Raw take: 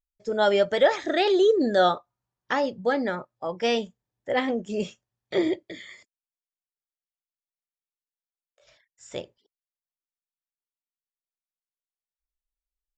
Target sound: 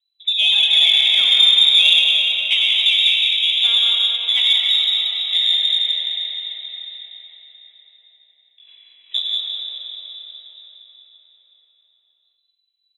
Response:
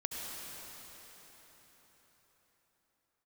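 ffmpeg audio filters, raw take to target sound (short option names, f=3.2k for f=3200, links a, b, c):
-filter_complex "[0:a]acrossover=split=110|1200[a][b][c];[b]acompressor=threshold=-32dB:ratio=8[d];[a][d][c]amix=inputs=3:normalize=0,lowpass=f=3.4k:t=q:w=0.5098,lowpass=f=3.4k:t=q:w=0.6013,lowpass=f=3.4k:t=q:w=0.9,lowpass=f=3.4k:t=q:w=2.563,afreqshift=-4000,aecho=1:1:180:0.447[e];[1:a]atrim=start_sample=2205[f];[e][f]afir=irnorm=-1:irlink=0,aexciter=amount=11.2:drive=7.6:freq=2.5k,volume=-6.5dB"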